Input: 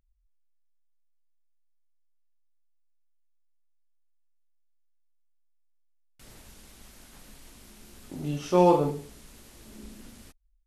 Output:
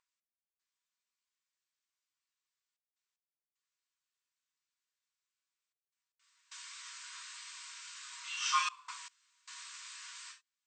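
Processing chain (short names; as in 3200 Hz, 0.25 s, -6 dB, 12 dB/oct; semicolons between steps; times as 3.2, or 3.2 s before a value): non-linear reverb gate 0.11 s falling, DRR -2 dB; FFT band-pass 940–8500 Hz; step gate "x..xxxxxxxxxxx." 76 bpm -24 dB; gain +4 dB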